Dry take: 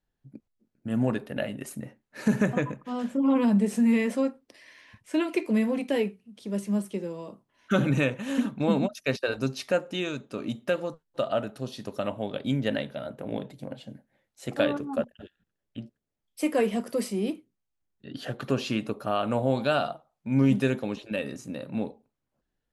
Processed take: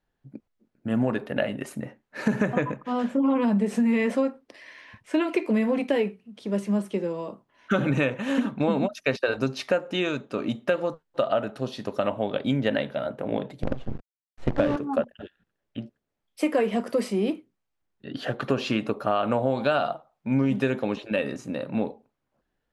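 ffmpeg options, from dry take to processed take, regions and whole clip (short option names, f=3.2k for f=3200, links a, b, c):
-filter_complex "[0:a]asettb=1/sr,asplit=3[a][b][c];[a]atrim=end=13.634[d];[b]atrim=start=13.63:end=14.76,asetpts=PTS-STARTPTS,afade=t=in:d=0.004:c=qsin,afade=t=out:st=1.126:d=0.004:c=qsin,acrusher=bits=6:dc=4:mix=0:aa=0.000001,aemphasis=mode=reproduction:type=riaa[e];[c]atrim=start=14.756[f];[d][e]acrossfade=d=0.004:c1=hsin:c2=qsin[g];[g][f]acrossfade=d=0.004:c1=qsin:c2=hsin,lowpass=f=2.1k:p=1,lowshelf=f=340:g=-7.5,acompressor=threshold=-28dB:ratio=6,volume=9dB"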